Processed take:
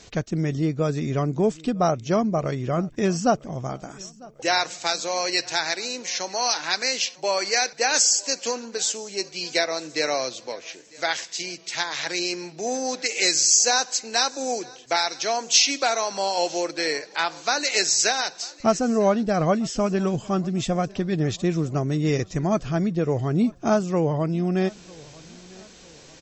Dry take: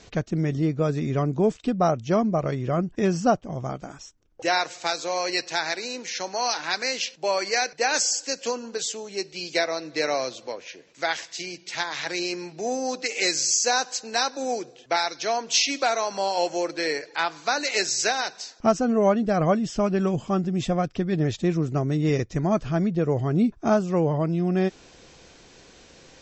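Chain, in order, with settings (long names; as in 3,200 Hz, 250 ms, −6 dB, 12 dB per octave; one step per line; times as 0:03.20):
high-shelf EQ 4,700 Hz +8 dB
on a send: repeating echo 949 ms, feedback 45%, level −24 dB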